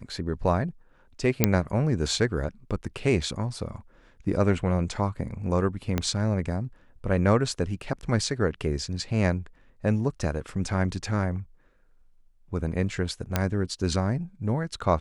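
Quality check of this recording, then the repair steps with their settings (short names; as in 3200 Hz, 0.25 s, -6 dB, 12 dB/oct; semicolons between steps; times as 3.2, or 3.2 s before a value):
1.44 pop -2 dBFS
5.98 pop -11 dBFS
13.36 pop -8 dBFS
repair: de-click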